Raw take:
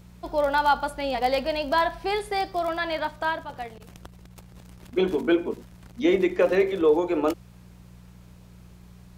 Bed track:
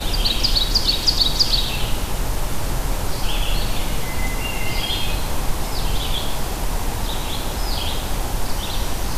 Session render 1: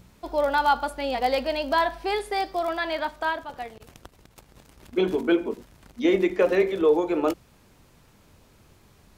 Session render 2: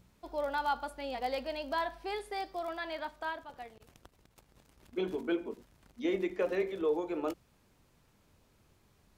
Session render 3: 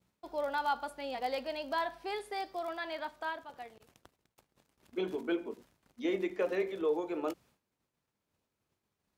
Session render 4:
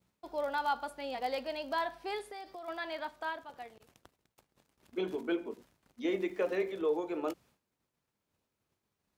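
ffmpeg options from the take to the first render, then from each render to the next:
-af "bandreject=f=60:t=h:w=4,bandreject=f=120:t=h:w=4,bandreject=f=180:t=h:w=4"
-af "volume=0.282"
-af "agate=range=0.0224:threshold=0.00158:ratio=3:detection=peak,highpass=f=160:p=1"
-filter_complex "[0:a]asplit=3[s0][s1][s2];[s0]afade=t=out:st=2.25:d=0.02[s3];[s1]acompressor=threshold=0.00891:ratio=12:attack=3.2:release=140:knee=1:detection=peak,afade=t=in:st=2.25:d=0.02,afade=t=out:st=2.67:d=0.02[s4];[s2]afade=t=in:st=2.67:d=0.02[s5];[s3][s4][s5]amix=inputs=3:normalize=0,asettb=1/sr,asplit=3[s6][s7][s8];[s6]atrim=end=6.054[s9];[s7]atrim=start=6.05:end=6.71,asetpts=PTS-STARTPTS,afade=t=in:d=0.004:c=qsin,afade=t=out:st=0.656:d=0.004:c=qsin,aeval=exprs='val(0)*gte(abs(val(0)),0.00112)':c=same[s10];[s8]atrim=start=6.706[s11];[s9][s10]acrossfade=d=0.004:c1=hsin:c2=qsin[s12];[s12][s11]acrossfade=d=0.004:c1=qsin:c2=hsin"

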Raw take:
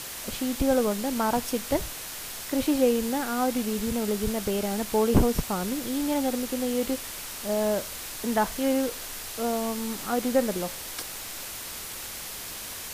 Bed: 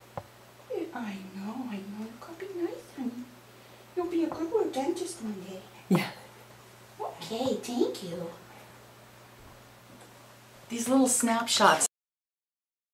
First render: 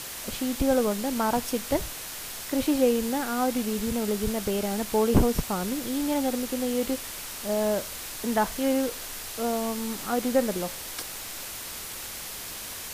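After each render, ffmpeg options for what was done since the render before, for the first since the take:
-af anull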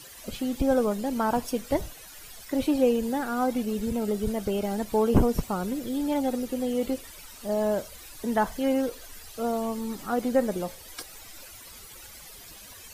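-af "afftdn=nr=14:nf=-38"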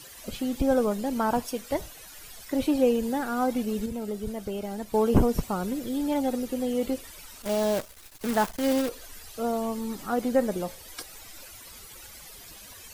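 -filter_complex "[0:a]asettb=1/sr,asplit=3[s0][s1][s2];[s0]atrim=end=1.424[s3];[s1]atrim=start=1.42:end=1.95,asetpts=PTS-STARTPTS,afade=t=in:d=0.004:c=qsin,afade=t=out:st=0.526:d=0.004:c=qsin,lowshelf=f=390:g=-6.5[s4];[s2]atrim=start=1.946[s5];[s3][s4]acrossfade=d=0.004:c1=hsin:c2=qsin[s6];[s6][s5]acrossfade=d=0.004:c1=qsin:c2=hsin,asettb=1/sr,asplit=3[s7][s8][s9];[s7]atrim=end=7.424[s10];[s8]atrim=start=7.42:end=8.89,asetpts=PTS-STARTPTS,afade=t=in:d=0.004:c=qsin,afade=t=out:st=1.466:d=0.004:c=qsin,acrusher=bits=6:dc=4:mix=0:aa=0.000001[s11];[s9]atrim=start=8.886[s12];[s10][s11]acrossfade=d=0.004:c1=hsin:c2=qsin[s13];[s13][s12]acrossfade=d=0.004:c1=qsin:c2=hsin,asplit=3[s14][s15][s16];[s14]atrim=end=3.862[s17];[s15]atrim=start=3.858:end=4.942,asetpts=PTS-STARTPTS,volume=0.562[s18];[s16]atrim=start=4.938[s19];[s17][s18]acrossfade=d=0.004:c1=hsin:c2=hsin[s20];[s20][s19]acrossfade=d=0.004:c1=hsin:c2=hsin"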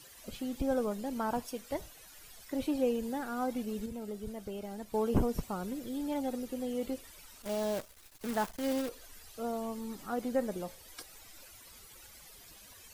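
-af "volume=0.398"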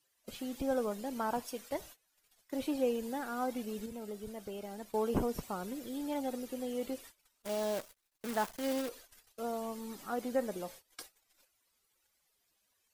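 -af "agate=range=0.0708:threshold=0.00355:ratio=16:detection=peak,lowshelf=f=170:g=-10"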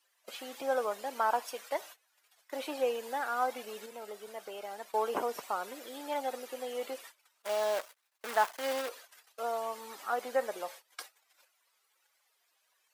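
-af "highpass=550,equalizer=f=1200:w=0.35:g=8"

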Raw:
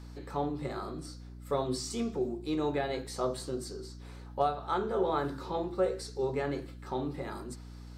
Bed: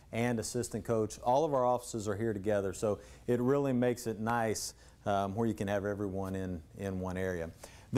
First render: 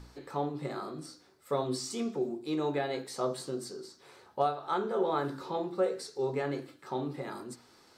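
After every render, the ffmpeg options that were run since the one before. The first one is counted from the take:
-af "bandreject=f=60:t=h:w=4,bandreject=f=120:t=h:w=4,bandreject=f=180:t=h:w=4,bandreject=f=240:t=h:w=4,bandreject=f=300:t=h:w=4"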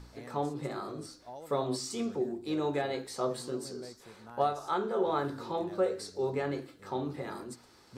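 -filter_complex "[1:a]volume=0.133[s0];[0:a][s0]amix=inputs=2:normalize=0"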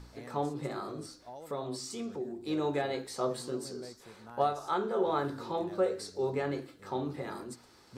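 -filter_complex "[0:a]asettb=1/sr,asplit=3[s0][s1][s2];[s0]atrim=end=1.164[s3];[s1]atrim=start=1.16:end=2.41,asetpts=PTS-STARTPTS,afade=t=in:d=0.004:c=qsin,afade=t=out:st=1.246:d=0.004:c=qsin,acompressor=threshold=0.00794:ratio=1.5:attack=3.2:release=140:knee=1:detection=peak[s4];[s2]atrim=start=2.406[s5];[s3][s4]acrossfade=d=0.004:c1=hsin:c2=qsin[s6];[s6][s5]acrossfade=d=0.004:c1=qsin:c2=hsin"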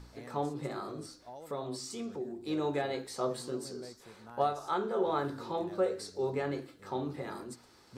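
-af "volume=0.891"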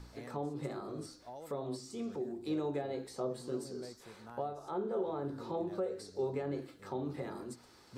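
-filter_complex "[0:a]acrossover=split=740[s0][s1];[s0]alimiter=level_in=1.5:limit=0.0631:level=0:latency=1:release=286,volume=0.668[s2];[s1]acompressor=threshold=0.00355:ratio=12[s3];[s2][s3]amix=inputs=2:normalize=0"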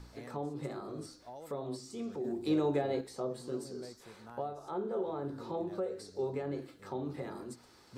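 -filter_complex "[0:a]asettb=1/sr,asplit=3[s0][s1][s2];[s0]atrim=end=2.244[s3];[s1]atrim=start=2.24:end=3.01,asetpts=PTS-STARTPTS,afade=t=in:d=0.004:c=qsin,afade=t=out:st=0.766:d=0.004:c=qsin,acontrast=36[s4];[s2]atrim=start=3.006[s5];[s3][s4]acrossfade=d=0.004:c1=hsin:c2=qsin[s6];[s6][s5]acrossfade=d=0.004:c1=qsin:c2=hsin"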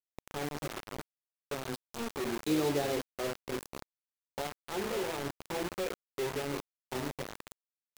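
-af "acrusher=bits=5:mix=0:aa=0.000001"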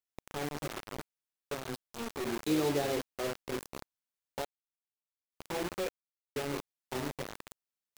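-filter_complex "[0:a]asettb=1/sr,asplit=3[s0][s1][s2];[s0]atrim=end=1.544[s3];[s1]atrim=start=1.54:end=2.27,asetpts=PTS-STARTPTS,afade=t=in:d=0.004:c=qsin,afade=t=out:st=0.726:d=0.004:c=qsin,aeval=exprs='if(lt(val(0),0),0.708*val(0),val(0))':c=same[s4];[s2]atrim=start=2.266[s5];[s3][s4]acrossfade=d=0.004:c1=hsin:c2=qsin[s6];[s6][s5]acrossfade=d=0.004:c1=qsin:c2=hsin,asplit=5[s7][s8][s9][s10][s11];[s7]atrim=end=4.45,asetpts=PTS-STARTPTS,afade=t=out:st=4.446:d=0.004:c=hsin[s12];[s8]atrim=start=4.45:end=5.32,asetpts=PTS-STARTPTS,volume=0[s13];[s9]atrim=start=5.32:end=5.89,asetpts=PTS-STARTPTS,afade=t=in:d=0.004:c=hsin,afade=t=out:st=0.566:d=0.004:c=hsin[s14];[s10]atrim=start=5.89:end=6.36,asetpts=PTS-STARTPTS,volume=0[s15];[s11]atrim=start=6.36,asetpts=PTS-STARTPTS,afade=t=in:d=0.004:c=hsin[s16];[s12][s13][s14][s15][s16]concat=n=5:v=0:a=1"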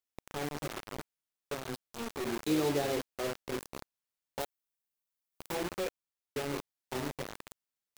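-filter_complex "[0:a]asettb=1/sr,asplit=3[s0][s1][s2];[s0]atrim=end=4.404[s3];[s1]atrim=start=4.4:end=5.55,asetpts=PTS-STARTPTS,afade=t=in:d=0.004:c=qsin,afade=t=out:st=1.146:d=0.004:c=qsin,highshelf=f=9900:g=9.5[s4];[s2]atrim=start=5.546[s5];[s3][s4]acrossfade=d=0.004:c1=hsin:c2=qsin[s6];[s6][s5]acrossfade=d=0.004:c1=qsin:c2=hsin"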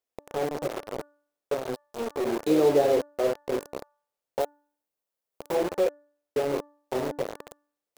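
-af "equalizer=f=530:w=0.95:g=13.5,bandreject=f=292.2:t=h:w=4,bandreject=f=584.4:t=h:w=4,bandreject=f=876.6:t=h:w=4,bandreject=f=1168.8:t=h:w=4,bandreject=f=1461:t=h:w=4,bandreject=f=1753.2:t=h:w=4"

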